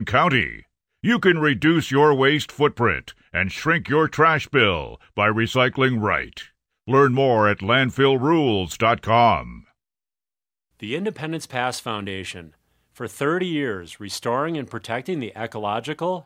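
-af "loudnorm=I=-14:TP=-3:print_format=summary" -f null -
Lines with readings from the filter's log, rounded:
Input Integrated:    -21.3 LUFS
Input True Peak:      -4.0 dBTP
Input LRA:             7.8 LU
Input Threshold:     -31.8 LUFS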